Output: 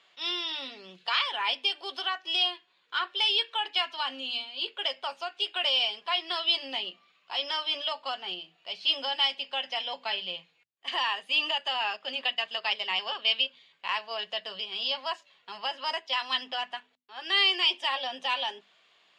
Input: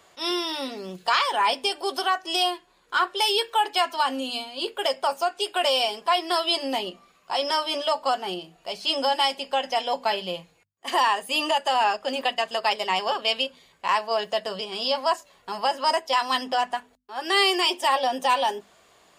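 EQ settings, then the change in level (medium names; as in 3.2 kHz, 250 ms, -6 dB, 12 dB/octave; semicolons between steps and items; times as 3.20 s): high-pass 130 Hz 24 dB/octave; resonant low-pass 3.2 kHz, resonance Q 1.8; tilt shelf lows -6.5 dB, about 1.4 kHz; -9.0 dB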